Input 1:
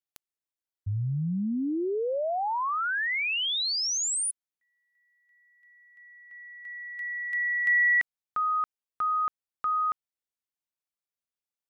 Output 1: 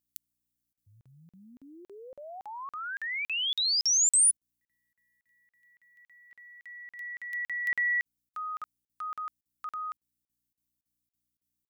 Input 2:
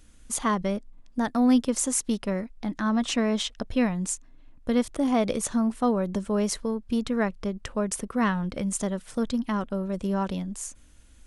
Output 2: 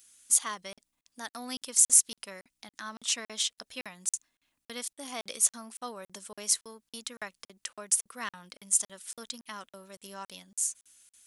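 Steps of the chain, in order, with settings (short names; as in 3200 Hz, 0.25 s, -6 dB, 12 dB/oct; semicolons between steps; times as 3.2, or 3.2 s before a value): buzz 60 Hz, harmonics 5, -63 dBFS -7 dB/oct; differentiator; crackling interface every 0.28 s, samples 2048, zero, from 0.73; gain +6 dB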